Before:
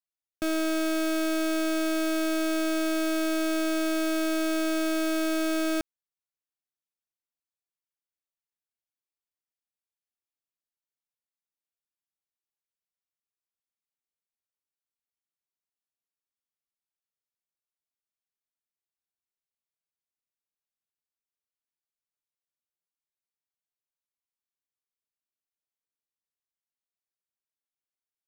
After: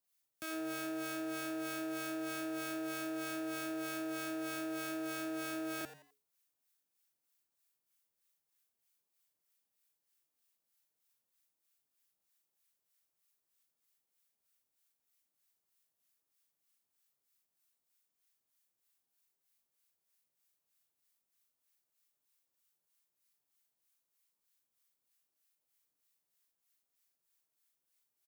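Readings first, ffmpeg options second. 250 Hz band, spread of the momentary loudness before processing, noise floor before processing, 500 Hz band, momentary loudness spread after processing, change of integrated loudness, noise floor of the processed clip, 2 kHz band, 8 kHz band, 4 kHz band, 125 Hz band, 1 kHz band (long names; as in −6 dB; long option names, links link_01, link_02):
−13.5 dB, 1 LU, below −85 dBFS, −13.5 dB, 1 LU, −12.5 dB, below −85 dBFS, −10.0 dB, −10.5 dB, −13.0 dB, can't be measured, −9.5 dB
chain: -filter_complex "[0:a]asplit=2[link_01][link_02];[link_02]adelay=40,volume=-5dB[link_03];[link_01][link_03]amix=inputs=2:normalize=0,asplit=2[link_04][link_05];[link_05]aeval=exprs='0.075*sin(PI/2*2*val(0)/0.075)':channel_layout=same,volume=-4dB[link_06];[link_04][link_06]amix=inputs=2:normalize=0,acrossover=split=980|2300[link_07][link_08][link_09];[link_07]acompressor=threshold=-33dB:ratio=4[link_10];[link_08]acompressor=threshold=-39dB:ratio=4[link_11];[link_09]acompressor=threshold=-45dB:ratio=4[link_12];[link_10][link_11][link_12]amix=inputs=3:normalize=0,acrossover=split=1000[link_13][link_14];[link_13]aeval=exprs='val(0)*(1-0.7/2+0.7/2*cos(2*PI*3.2*n/s))':channel_layout=same[link_15];[link_14]aeval=exprs='val(0)*(1-0.7/2-0.7/2*cos(2*PI*3.2*n/s))':channel_layout=same[link_16];[link_15][link_16]amix=inputs=2:normalize=0,alimiter=level_in=10.5dB:limit=-24dB:level=0:latency=1,volume=-10.5dB,asplit=4[link_17][link_18][link_19][link_20];[link_18]adelay=85,afreqshift=140,volume=-13.5dB[link_21];[link_19]adelay=170,afreqshift=280,volume=-22.6dB[link_22];[link_20]adelay=255,afreqshift=420,volume=-31.7dB[link_23];[link_17][link_21][link_22][link_23]amix=inputs=4:normalize=0,crystalizer=i=1:c=0,highpass=84,volume=-1dB"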